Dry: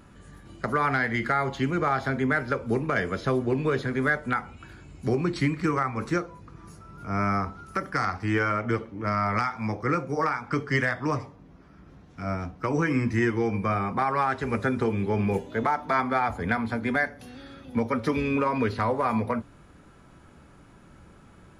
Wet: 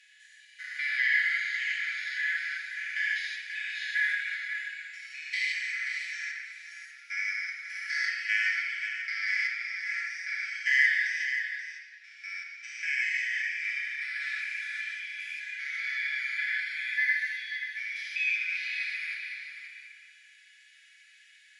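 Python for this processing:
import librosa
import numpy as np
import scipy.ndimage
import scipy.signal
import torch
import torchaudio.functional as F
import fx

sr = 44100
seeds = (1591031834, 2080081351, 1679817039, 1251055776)

p1 = fx.spec_steps(x, sr, hold_ms=200)
p2 = fx.rider(p1, sr, range_db=10, speed_s=2.0)
p3 = p1 + (p2 * librosa.db_to_amplitude(-3.0))
p4 = scipy.signal.sosfilt(scipy.signal.butter(16, 1700.0, 'highpass', fs=sr, output='sos'), p3)
p5 = fx.air_absorb(p4, sr, metres=66.0)
p6 = p5 + 0.88 * np.pad(p5, (int(5.9 * sr / 1000.0), 0))[:len(p5)]
p7 = p6 + 10.0 ** (-8.5 / 20.0) * np.pad(p6, (int(533 * sr / 1000.0), 0))[:len(p6)]
y = fx.room_shoebox(p7, sr, seeds[0], volume_m3=2800.0, walls='mixed', distance_m=2.4)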